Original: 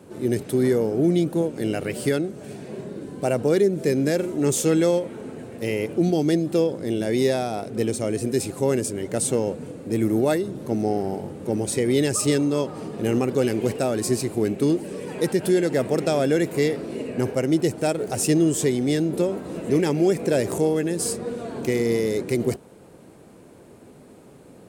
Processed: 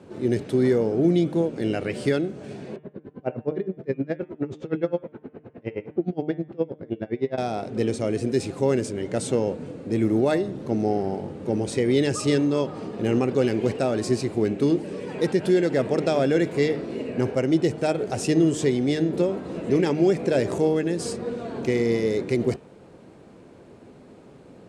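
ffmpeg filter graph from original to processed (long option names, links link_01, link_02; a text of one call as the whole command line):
ffmpeg -i in.wav -filter_complex "[0:a]asettb=1/sr,asplit=3[link_01][link_02][link_03];[link_01]atrim=end=2.764[link_04];[link_02]atrim=start=2.76:end=7.38,asetpts=PTS-STARTPTS,afade=type=in:duration=0.004:curve=qsin,afade=type=out:start_time=4.616:duration=0.004:curve=qsin,lowpass=2000,aeval=exprs='val(0)*pow(10,-31*(0.5-0.5*cos(2*PI*9.6*n/s))/20)':channel_layout=same[link_05];[link_03]atrim=start=7.376[link_06];[link_04][link_05]acrossfade=duration=0.004:curve1=hsin:curve2=qsin[link_07];[link_07][link_06]acrossfade=duration=0.004:curve1=qsin:curve2=hsin,lowpass=5300,bandreject=frequency=151.1:width_type=h:width=4,bandreject=frequency=302.2:width_type=h:width=4,bandreject=frequency=453.3:width_type=h:width=4,bandreject=frequency=604.4:width_type=h:width=4,bandreject=frequency=755.5:width_type=h:width=4,bandreject=frequency=906.6:width_type=h:width=4,bandreject=frequency=1057.7:width_type=h:width=4,bandreject=frequency=1208.8:width_type=h:width=4,bandreject=frequency=1359.9:width_type=h:width=4,bandreject=frequency=1511:width_type=h:width=4,bandreject=frequency=1662.1:width_type=h:width=4,bandreject=frequency=1813.2:width_type=h:width=4,bandreject=frequency=1964.3:width_type=h:width=4,bandreject=frequency=2115.4:width_type=h:width=4,bandreject=frequency=2266.5:width_type=h:width=4,bandreject=frequency=2417.6:width_type=h:width=4,bandreject=frequency=2568.7:width_type=h:width=4,bandreject=frequency=2719.8:width_type=h:width=4,bandreject=frequency=2870.9:width_type=h:width=4,bandreject=frequency=3022:width_type=h:width=4,bandreject=frequency=3173.1:width_type=h:width=4,bandreject=frequency=3324.2:width_type=h:width=4,bandreject=frequency=3475.3:width_type=h:width=4,bandreject=frequency=3626.4:width_type=h:width=4" out.wav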